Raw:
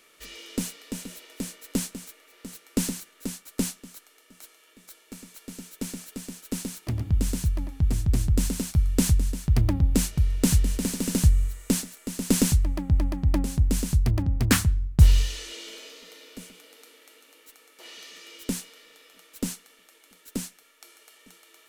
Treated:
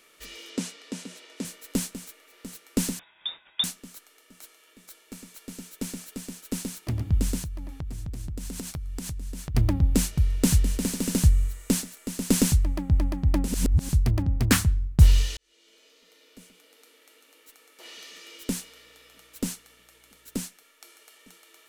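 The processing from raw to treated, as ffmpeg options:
-filter_complex "[0:a]asettb=1/sr,asplit=3[s0][s1][s2];[s0]atrim=end=0.504[s3];[s1]atrim=start=0.5:end=1.45,asetpts=PTS-STARTPTS,afade=t=in:d=0.004:c=qsin,afade=t=out:st=0.946:d=0.004:c=qsin,highpass=160,lowpass=7700[s4];[s2]atrim=start=1.446[s5];[s3][s4]acrossfade=d=0.004:c1=hsin:c2=qsin[s6];[s6][s5]acrossfade=d=0.004:c1=qsin:c2=hsin,asettb=1/sr,asplit=3[s7][s8][s9];[s7]atrim=end=2.994[s10];[s8]atrim=start=2.99:end=3.64,asetpts=PTS-STARTPTS,afade=t=in:d=0.004:c=qsin,afade=t=out:st=0.646:d=0.004:c=qsin,lowpass=f=3200:t=q:w=0.5098,lowpass=f=3200:t=q:w=0.6013,lowpass=f=3200:t=q:w=0.9,lowpass=f=3200:t=q:w=2.563,afreqshift=-3800[s11];[s9]atrim=start=3.636[s12];[s10][s11]acrossfade=d=0.004:c1=hsin:c2=qsin[s13];[s13][s12]acrossfade=d=0.004:c1=qsin:c2=hsin,asettb=1/sr,asplit=3[s14][s15][s16];[s14]atrim=end=7.394[s17];[s15]atrim=start=7.39:end=9.55,asetpts=PTS-STARTPTS,afade=t=in:d=0.004:c=qsin,afade=t=out:st=2.156:d=0.004:c=qsin,acompressor=threshold=0.0316:ratio=16:attack=3.2:release=140:knee=1:detection=peak[s18];[s16]atrim=start=9.546[s19];[s17][s18]acrossfade=d=0.004:c1=hsin:c2=qsin[s20];[s20][s19]acrossfade=d=0.004:c1=qsin:c2=hsin,asettb=1/sr,asplit=3[s21][s22][s23];[s21]atrim=end=18.544[s24];[s22]atrim=start=18.54:end=20.42,asetpts=PTS-STARTPTS,afade=t=in:d=0.004:c=qsin,afade=t=out:st=1.876:d=0.004:c=qsin,aeval=exprs='val(0)+0.000398*(sin(2*PI*60*n/s)+sin(2*PI*2*60*n/s)/2+sin(2*PI*3*60*n/s)/3+sin(2*PI*4*60*n/s)/4+sin(2*PI*5*60*n/s)/5)':c=same[s25];[s23]atrim=start=20.416[s26];[s24][s25]acrossfade=d=0.004:c1=hsin:c2=qsin[s27];[s27][s26]acrossfade=d=0.004:c1=qsin:c2=hsin,asplit=4[s28][s29][s30][s31];[s28]atrim=end=13.482[s32];[s29]atrim=start=13.478:end=13.892,asetpts=PTS-STARTPTS,areverse[s33];[s30]atrim=start=13.888:end=15.37,asetpts=PTS-STARTPTS,afade=t=out:st=1.478:d=0.004:c=hsin[s34];[s31]atrim=start=15.37,asetpts=PTS-STARTPTS,afade=t=in:d=2.54[s35];[s32][s33]acrossfade=d=0.004:c1=hsin:c2=hsin[s36];[s34][s35]concat=n=2:v=0:a=1[s37];[s36][s37]acrossfade=d=0.004:c1=hsin:c2=hsin"

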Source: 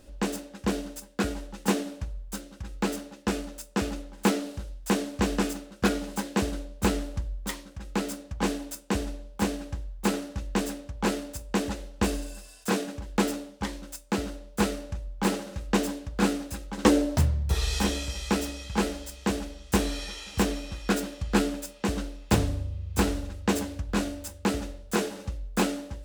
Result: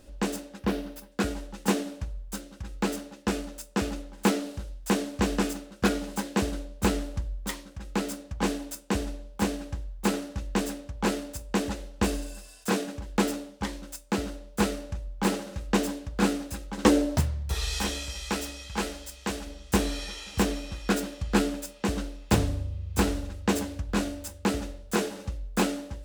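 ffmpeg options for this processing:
-filter_complex "[0:a]asettb=1/sr,asplit=3[s0][s1][s2];[s0]atrim=end=0.594[s3];[s1]atrim=start=0.59:end=1.12,asetpts=PTS-STARTPTS,afade=t=in:d=0.004:c=qsin,afade=t=out:st=0.526:d=0.004:c=qsin,equalizer=f=7500:t=o:w=0.85:g=-11.5[s4];[s2]atrim=start=1.116[s5];[s3][s4]acrossfade=d=0.004:c1=hsin:c2=qsin[s6];[s6][s5]acrossfade=d=0.004:c1=qsin:c2=hsin,asettb=1/sr,asplit=3[s7][s8][s9];[s7]atrim=end=17.204[s10];[s8]atrim=start=17.2:end=19.47,asetpts=PTS-STARTPTS,afade=t=in:d=0.004:c=qsin,afade=t=out:st=2.266:d=0.004:c=qsin,equalizer=f=180:w=0.3:g=-6.5[s11];[s9]atrim=start=19.466[s12];[s10][s11]acrossfade=d=0.004:c1=hsin:c2=qsin[s13];[s13][s12]acrossfade=d=0.004:c1=qsin:c2=hsin"

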